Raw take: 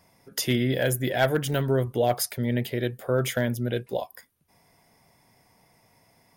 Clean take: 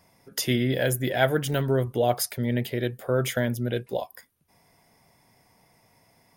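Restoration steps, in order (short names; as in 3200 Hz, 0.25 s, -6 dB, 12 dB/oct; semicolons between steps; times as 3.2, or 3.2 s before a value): clip repair -13.5 dBFS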